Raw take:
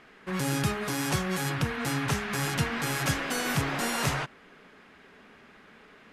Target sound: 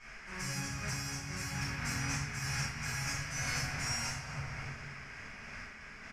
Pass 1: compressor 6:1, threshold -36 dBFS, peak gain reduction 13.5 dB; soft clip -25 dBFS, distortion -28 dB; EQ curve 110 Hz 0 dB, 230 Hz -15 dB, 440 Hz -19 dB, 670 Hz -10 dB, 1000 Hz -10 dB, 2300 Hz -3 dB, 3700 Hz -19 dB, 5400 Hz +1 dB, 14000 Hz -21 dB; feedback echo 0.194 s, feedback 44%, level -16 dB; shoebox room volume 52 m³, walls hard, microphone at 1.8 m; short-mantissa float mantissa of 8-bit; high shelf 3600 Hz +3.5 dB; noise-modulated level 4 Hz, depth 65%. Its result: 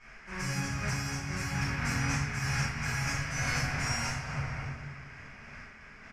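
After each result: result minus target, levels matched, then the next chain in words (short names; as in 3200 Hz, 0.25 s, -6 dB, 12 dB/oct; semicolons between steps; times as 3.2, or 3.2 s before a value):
compressor: peak gain reduction -6.5 dB; 8000 Hz band -4.5 dB
compressor 6:1, threshold -44 dBFS, peak gain reduction 20 dB; soft clip -25 dBFS, distortion -40 dB; EQ curve 110 Hz 0 dB, 230 Hz -15 dB, 440 Hz -19 dB, 670 Hz -10 dB, 1000 Hz -10 dB, 2300 Hz -3 dB, 3700 Hz -19 dB, 5400 Hz +1 dB, 14000 Hz -21 dB; feedback echo 0.194 s, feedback 44%, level -16 dB; shoebox room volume 52 m³, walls hard, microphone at 1.8 m; short-mantissa float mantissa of 8-bit; high shelf 3600 Hz +3.5 dB; noise-modulated level 4 Hz, depth 65%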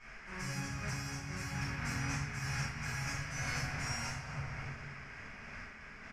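8000 Hz band -3.5 dB
compressor 6:1, threshold -44 dBFS, peak gain reduction 20 dB; soft clip -25 dBFS, distortion -40 dB; EQ curve 110 Hz 0 dB, 230 Hz -15 dB, 440 Hz -19 dB, 670 Hz -10 dB, 1000 Hz -10 dB, 2300 Hz -3 dB, 3700 Hz -19 dB, 5400 Hz +1 dB, 14000 Hz -21 dB; feedback echo 0.194 s, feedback 44%, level -16 dB; shoebox room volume 52 m³, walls hard, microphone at 1.8 m; short-mantissa float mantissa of 8-bit; high shelf 3600 Hz +11 dB; noise-modulated level 4 Hz, depth 65%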